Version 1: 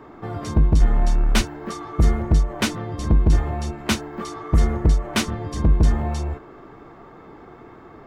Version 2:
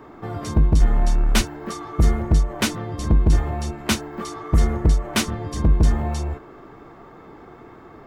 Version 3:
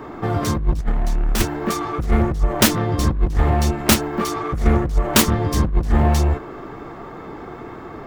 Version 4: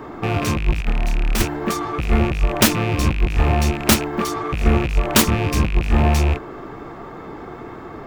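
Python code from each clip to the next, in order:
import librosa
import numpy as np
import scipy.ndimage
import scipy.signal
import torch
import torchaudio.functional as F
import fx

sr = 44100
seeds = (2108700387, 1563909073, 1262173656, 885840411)

y1 = fx.high_shelf(x, sr, hz=8000.0, db=6.0)
y2 = fx.self_delay(y1, sr, depth_ms=0.41)
y2 = fx.over_compress(y2, sr, threshold_db=-19.0, ratio=-0.5)
y2 = y2 * librosa.db_to_amplitude(5.0)
y3 = fx.rattle_buzz(y2, sr, strikes_db=-26.0, level_db=-17.0)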